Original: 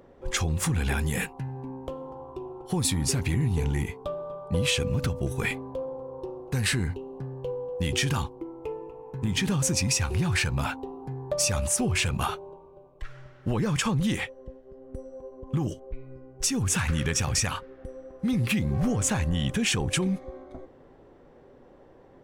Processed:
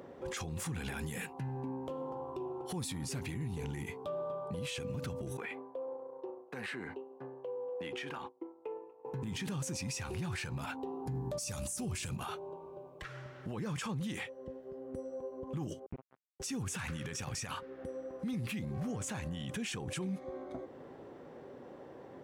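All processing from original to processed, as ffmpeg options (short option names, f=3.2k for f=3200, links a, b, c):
-filter_complex "[0:a]asettb=1/sr,asplit=3[a][b][c];[a]atrim=end=5.374[d];[b]atrim=start=5.37:end=9.05,asetpts=PTS-STARTPTS,afade=t=in:d=0.004:c=qsin,afade=t=out:st=3.676:d=0.004:c=qsin,agate=range=-33dB:threshold=-32dB:ratio=3:release=100:detection=peak,acrossover=split=270 2900:gain=0.0891 1 0.126[e][f][g];[e][f][g]amix=inputs=3:normalize=0,acompressor=threshold=-37dB:ratio=4:attack=3.2:release=140:knee=1:detection=peak[h];[c]atrim=start=9.046[i];[d][h]acrossfade=d=0.004:c1=hsin:c2=qsin[j];[j][i]acrossfade=d=0.004:c1=qsin:c2=hsin,asettb=1/sr,asplit=3[k][l][m];[k]atrim=end=11.064[n];[l]atrim=start=11.06:end=12.16,asetpts=PTS-STARTPTS,afade=t=in:d=0.004:c=qsin,afade=t=out:st=1.096:d=0.004:c=qsin,bass=f=250:g=6,treble=f=4k:g=12,aeval=exprs='val(0)+0.02*(sin(2*PI*60*n/s)+sin(2*PI*2*60*n/s)/2+sin(2*PI*3*60*n/s)/3+sin(2*PI*4*60*n/s)/4+sin(2*PI*5*60*n/s)/5)':c=same[o];[m]atrim=start=12.156[p];[n][o]acrossfade=d=0.004:c1=hsin:c2=qsin[q];[q][p]acrossfade=d=0.004:c1=qsin:c2=hsin,asettb=1/sr,asplit=3[r][s][t];[r]atrim=end=15.864[u];[s]atrim=start=15.86:end=16.4,asetpts=PTS-STARTPTS,afade=t=in:d=0.004:c=qsin,afade=t=out:st=0.536:d=0.004:c=qsin,lowpass=1.3k,acrusher=bits=4:mix=0:aa=0.5[v];[t]atrim=start=16.396[w];[u][v]acrossfade=d=0.004:c1=hsin:c2=qsin[x];[x][w]acrossfade=d=0.004:c1=qsin:c2=hsin,highpass=120,acompressor=threshold=-48dB:ratio=1.5,alimiter=level_in=10.5dB:limit=-24dB:level=0:latency=1:release=41,volume=-10.5dB,volume=3.5dB"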